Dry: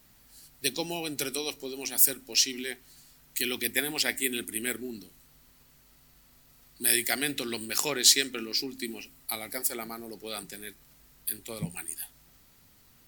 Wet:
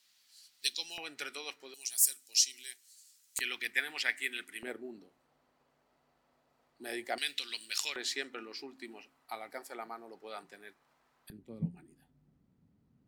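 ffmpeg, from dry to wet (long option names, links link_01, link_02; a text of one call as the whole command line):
ffmpeg -i in.wav -af "asetnsamples=nb_out_samples=441:pad=0,asendcmd='0.98 bandpass f 1600;1.74 bandpass f 7400;3.39 bandpass f 1800;4.63 bandpass f 670;7.18 bandpass f 3600;7.96 bandpass f 930;11.3 bandpass f 180',bandpass=frequency=4200:width_type=q:width=1.3:csg=0" out.wav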